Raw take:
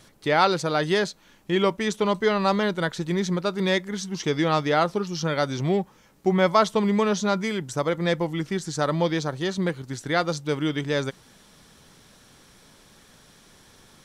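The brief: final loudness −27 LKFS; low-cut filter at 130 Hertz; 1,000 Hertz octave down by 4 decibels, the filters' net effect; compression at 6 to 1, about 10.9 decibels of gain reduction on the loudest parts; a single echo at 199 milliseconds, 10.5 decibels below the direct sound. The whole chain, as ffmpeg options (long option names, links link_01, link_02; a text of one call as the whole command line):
ffmpeg -i in.wav -af "highpass=130,equalizer=frequency=1000:width_type=o:gain=-5.5,acompressor=threshold=-29dB:ratio=6,aecho=1:1:199:0.299,volume=6dB" out.wav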